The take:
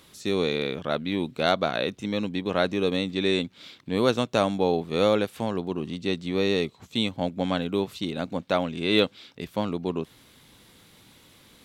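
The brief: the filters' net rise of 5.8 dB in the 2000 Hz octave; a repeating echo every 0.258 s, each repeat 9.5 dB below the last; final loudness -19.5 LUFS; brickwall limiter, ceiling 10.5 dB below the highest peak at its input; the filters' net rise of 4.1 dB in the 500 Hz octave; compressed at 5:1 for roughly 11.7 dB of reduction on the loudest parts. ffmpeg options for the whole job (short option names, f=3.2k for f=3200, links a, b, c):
-af "equalizer=f=500:t=o:g=4.5,equalizer=f=2k:t=o:g=7.5,acompressor=threshold=-26dB:ratio=5,alimiter=limit=-22.5dB:level=0:latency=1,aecho=1:1:258|516|774|1032:0.335|0.111|0.0365|0.012,volume=15.5dB"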